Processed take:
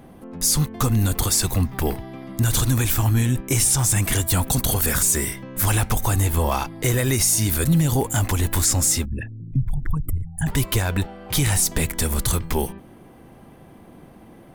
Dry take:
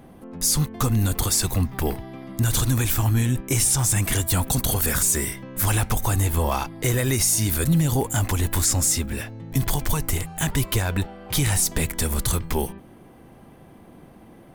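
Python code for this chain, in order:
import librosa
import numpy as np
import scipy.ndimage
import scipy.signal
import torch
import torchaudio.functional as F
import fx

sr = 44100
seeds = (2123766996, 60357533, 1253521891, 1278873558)

y = fx.envelope_sharpen(x, sr, power=3.0, at=(9.04, 10.46), fade=0.02)
y = F.gain(torch.from_numpy(y), 1.5).numpy()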